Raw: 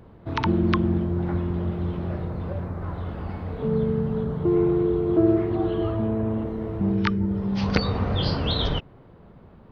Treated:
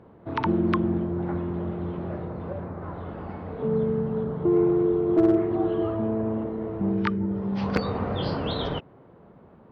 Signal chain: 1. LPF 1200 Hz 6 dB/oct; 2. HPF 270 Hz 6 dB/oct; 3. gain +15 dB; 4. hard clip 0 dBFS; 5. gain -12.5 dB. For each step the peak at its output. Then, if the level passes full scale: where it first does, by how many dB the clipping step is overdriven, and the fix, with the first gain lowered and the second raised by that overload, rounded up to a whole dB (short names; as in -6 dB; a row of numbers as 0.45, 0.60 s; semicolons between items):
-8.0, -8.0, +7.0, 0.0, -12.5 dBFS; step 3, 7.0 dB; step 3 +8 dB, step 5 -5.5 dB